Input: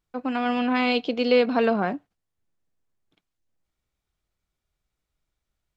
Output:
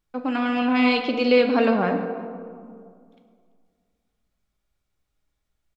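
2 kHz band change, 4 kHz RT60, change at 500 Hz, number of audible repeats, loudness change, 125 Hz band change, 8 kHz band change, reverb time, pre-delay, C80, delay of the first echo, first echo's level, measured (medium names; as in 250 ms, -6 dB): +2.5 dB, 1.0 s, +2.0 dB, 1, +2.0 dB, +4.0 dB, no reading, 2.2 s, 4 ms, 8.0 dB, 338 ms, -23.0 dB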